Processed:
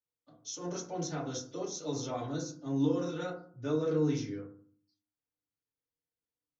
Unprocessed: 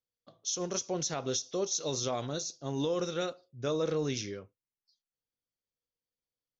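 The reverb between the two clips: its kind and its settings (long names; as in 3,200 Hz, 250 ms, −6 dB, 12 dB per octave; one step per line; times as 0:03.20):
feedback delay network reverb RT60 0.49 s, low-frequency decay 1.5×, high-frequency decay 0.3×, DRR −7 dB
level −11.5 dB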